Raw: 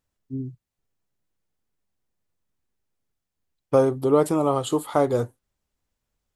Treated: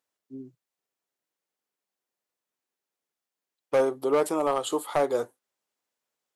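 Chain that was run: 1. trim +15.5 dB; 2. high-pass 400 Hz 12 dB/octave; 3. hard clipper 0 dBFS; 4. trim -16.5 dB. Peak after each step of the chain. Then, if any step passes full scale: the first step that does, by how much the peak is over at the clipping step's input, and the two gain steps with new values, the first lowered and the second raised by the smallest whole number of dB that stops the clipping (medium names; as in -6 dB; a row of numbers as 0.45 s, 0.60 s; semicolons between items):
+10.0 dBFS, +8.0 dBFS, 0.0 dBFS, -16.5 dBFS; step 1, 8.0 dB; step 1 +7.5 dB, step 4 -8.5 dB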